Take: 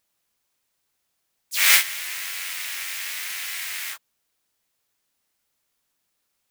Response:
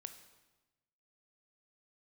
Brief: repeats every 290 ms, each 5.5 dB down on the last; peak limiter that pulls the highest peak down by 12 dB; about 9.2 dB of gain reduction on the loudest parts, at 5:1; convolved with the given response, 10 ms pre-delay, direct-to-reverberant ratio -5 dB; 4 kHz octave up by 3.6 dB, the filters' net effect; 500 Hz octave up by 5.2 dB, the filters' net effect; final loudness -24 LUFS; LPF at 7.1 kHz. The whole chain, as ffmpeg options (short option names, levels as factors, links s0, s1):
-filter_complex "[0:a]lowpass=7100,equalizer=f=500:t=o:g=7,equalizer=f=4000:t=o:g=5,acompressor=threshold=0.0891:ratio=5,alimiter=limit=0.0891:level=0:latency=1,aecho=1:1:290|580|870|1160|1450|1740|2030:0.531|0.281|0.149|0.079|0.0419|0.0222|0.0118,asplit=2[s0][s1];[1:a]atrim=start_sample=2205,adelay=10[s2];[s1][s2]afir=irnorm=-1:irlink=0,volume=3.16[s3];[s0][s3]amix=inputs=2:normalize=0"